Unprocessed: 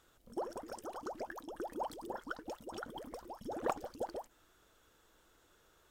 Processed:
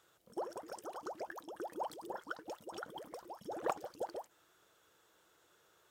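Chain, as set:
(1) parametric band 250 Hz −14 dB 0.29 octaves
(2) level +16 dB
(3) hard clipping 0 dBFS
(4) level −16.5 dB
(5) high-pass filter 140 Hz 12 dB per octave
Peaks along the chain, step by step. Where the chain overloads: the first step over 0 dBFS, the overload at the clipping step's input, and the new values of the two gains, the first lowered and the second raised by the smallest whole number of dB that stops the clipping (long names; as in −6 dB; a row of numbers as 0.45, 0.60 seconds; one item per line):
−20.5, −4.5, −4.5, −21.0, −20.0 dBFS
no step passes full scale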